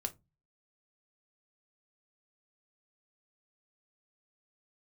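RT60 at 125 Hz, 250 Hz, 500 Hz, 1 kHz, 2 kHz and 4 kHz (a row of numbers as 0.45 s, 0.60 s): 0.55 s, 0.40 s, 0.25 s, 0.20 s, 0.15 s, 0.15 s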